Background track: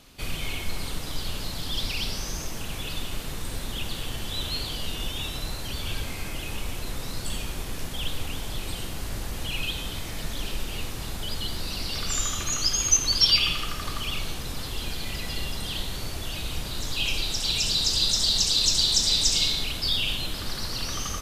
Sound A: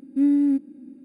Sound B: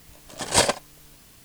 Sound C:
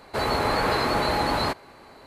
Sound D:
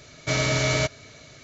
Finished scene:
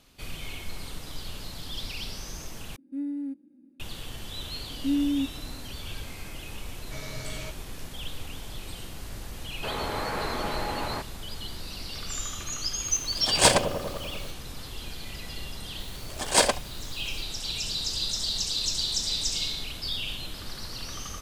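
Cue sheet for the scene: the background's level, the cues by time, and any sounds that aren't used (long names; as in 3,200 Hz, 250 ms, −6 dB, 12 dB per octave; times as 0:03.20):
background track −6.5 dB
0:02.76: overwrite with A −13.5 dB
0:04.68: mix in A −6.5 dB
0:06.64: mix in D −17.5 dB + high-pass filter 50 Hz
0:09.49: mix in C −8 dB
0:12.87: mix in B + delay with a low-pass on its return 98 ms, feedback 71%, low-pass 580 Hz, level −4.5 dB
0:15.80: mix in B −1.5 dB + high-pass filter 210 Hz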